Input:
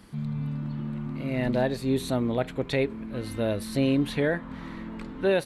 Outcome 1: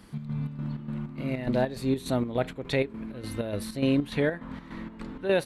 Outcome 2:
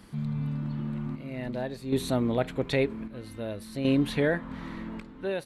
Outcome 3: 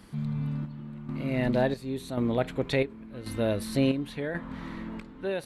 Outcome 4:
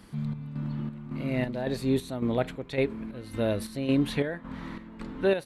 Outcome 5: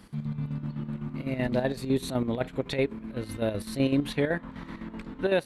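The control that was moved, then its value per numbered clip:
square tremolo, rate: 3.4 Hz, 0.52 Hz, 0.92 Hz, 1.8 Hz, 7.9 Hz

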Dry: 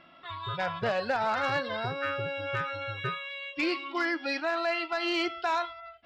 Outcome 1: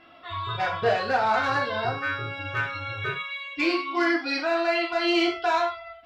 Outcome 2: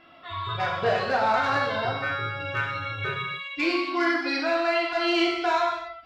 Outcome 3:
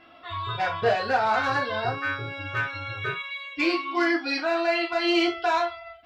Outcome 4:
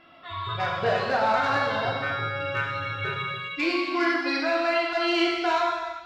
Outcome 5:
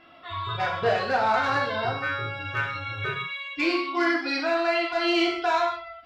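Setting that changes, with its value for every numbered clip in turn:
gated-style reverb, gate: 130 ms, 310 ms, 90 ms, 490 ms, 200 ms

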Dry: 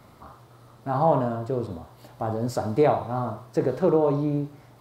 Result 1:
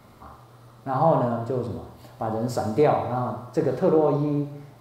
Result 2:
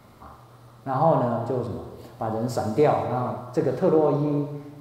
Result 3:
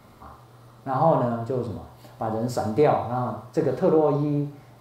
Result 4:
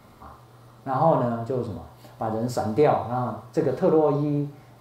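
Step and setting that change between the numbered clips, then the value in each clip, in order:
gated-style reverb, gate: 310 ms, 530 ms, 170 ms, 110 ms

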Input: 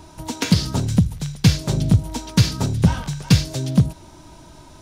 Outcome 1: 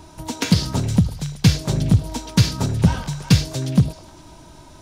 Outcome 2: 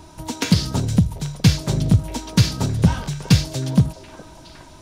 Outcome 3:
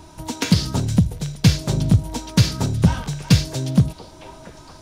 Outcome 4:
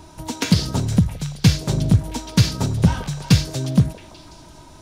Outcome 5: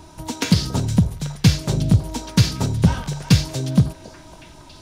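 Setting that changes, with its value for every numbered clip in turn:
repeats whose band climbs or falls, time: 104 ms, 415 ms, 692 ms, 168 ms, 278 ms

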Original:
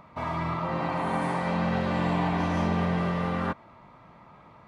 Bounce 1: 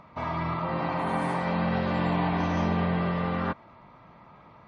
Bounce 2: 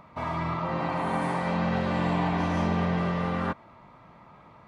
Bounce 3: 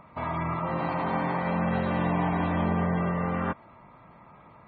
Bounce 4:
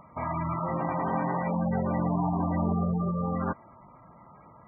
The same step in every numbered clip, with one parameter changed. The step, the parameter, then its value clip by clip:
spectral gate, under each frame's peak: -45 dB, -60 dB, -30 dB, -15 dB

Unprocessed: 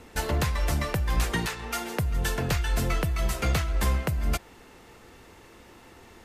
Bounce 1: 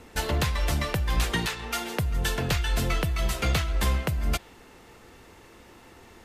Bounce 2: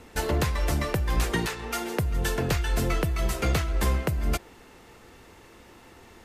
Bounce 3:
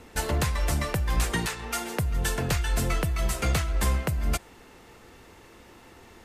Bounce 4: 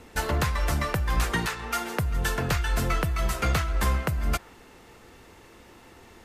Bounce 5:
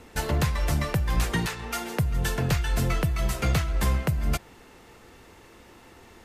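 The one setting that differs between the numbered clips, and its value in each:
dynamic bell, frequency: 3.4 kHz, 370 Hz, 8.6 kHz, 1.3 kHz, 140 Hz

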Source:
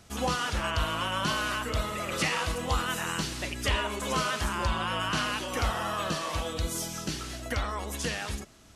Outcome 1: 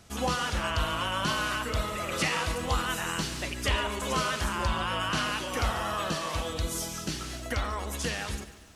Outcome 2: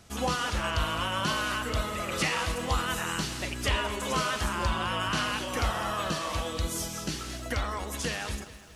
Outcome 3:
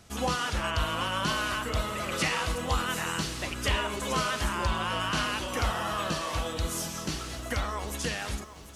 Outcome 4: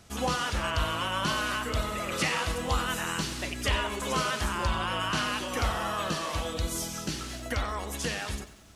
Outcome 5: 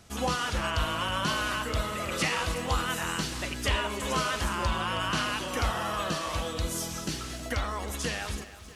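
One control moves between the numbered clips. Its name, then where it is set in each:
bit-crushed delay, time: 143 ms, 210 ms, 744 ms, 93 ms, 320 ms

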